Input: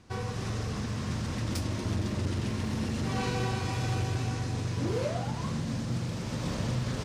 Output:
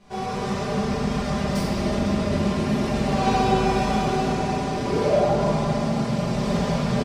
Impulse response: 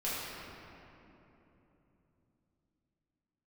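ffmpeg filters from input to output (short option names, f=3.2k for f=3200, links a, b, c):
-filter_complex "[0:a]equalizer=f=680:t=o:w=0.92:g=8,aecho=1:1:5:0.81[a];[1:a]atrim=start_sample=2205[b];[a][b]afir=irnorm=-1:irlink=0"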